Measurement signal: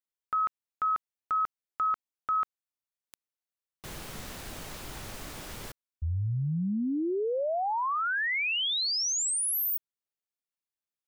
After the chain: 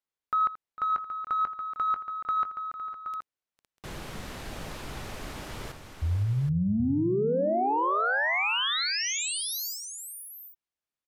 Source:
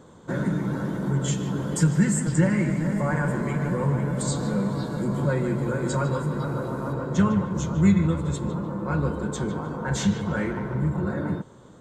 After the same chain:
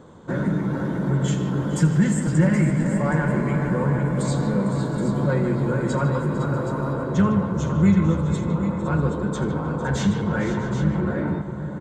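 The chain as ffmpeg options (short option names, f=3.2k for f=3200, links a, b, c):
-filter_complex "[0:a]aemphasis=mode=reproduction:type=cd,asplit=2[a][b];[b]asoftclip=type=tanh:threshold=-24dB,volume=-8dB[c];[a][c]amix=inputs=2:normalize=0,aecho=1:1:82|452|510|644|773:0.168|0.178|0.237|0.119|0.316,aresample=32000,aresample=44100"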